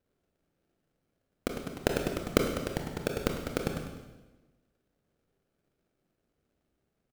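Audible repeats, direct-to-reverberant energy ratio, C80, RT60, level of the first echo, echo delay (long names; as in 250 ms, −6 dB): 1, 2.5 dB, 6.5 dB, 1.1 s, −14.5 dB, 199 ms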